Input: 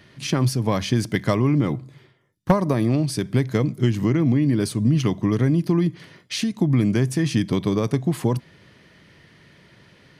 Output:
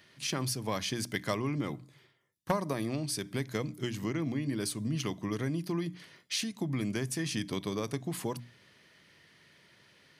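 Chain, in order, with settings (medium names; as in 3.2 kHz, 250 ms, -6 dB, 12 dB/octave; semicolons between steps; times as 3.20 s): tilt EQ +2 dB/octave; hum notches 60/120/180/240/300 Hz; trim -9 dB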